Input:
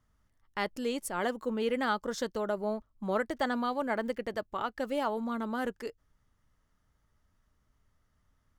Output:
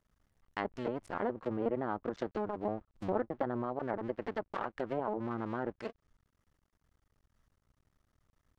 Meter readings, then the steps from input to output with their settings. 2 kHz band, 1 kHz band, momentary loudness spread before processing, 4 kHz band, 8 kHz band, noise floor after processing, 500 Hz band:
-8.5 dB, -4.5 dB, 6 LU, -14.5 dB, under -20 dB, -82 dBFS, -3.0 dB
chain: cycle switcher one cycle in 2, muted; treble ducked by the level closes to 900 Hz, closed at -30 dBFS

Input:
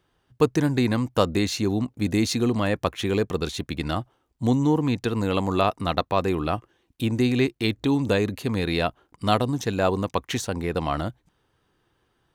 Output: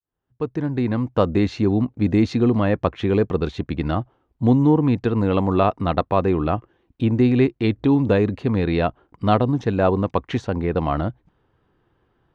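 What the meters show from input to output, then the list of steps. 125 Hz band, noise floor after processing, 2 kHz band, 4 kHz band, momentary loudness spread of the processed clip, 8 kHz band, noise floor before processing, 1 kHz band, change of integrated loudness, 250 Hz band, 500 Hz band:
+5.0 dB, -71 dBFS, -1.0 dB, -6.0 dB, 8 LU, under -15 dB, -70 dBFS, +2.5 dB, +4.0 dB, +4.5 dB, +4.0 dB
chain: opening faded in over 1.45 s; tape spacing loss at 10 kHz 33 dB; gain +6 dB

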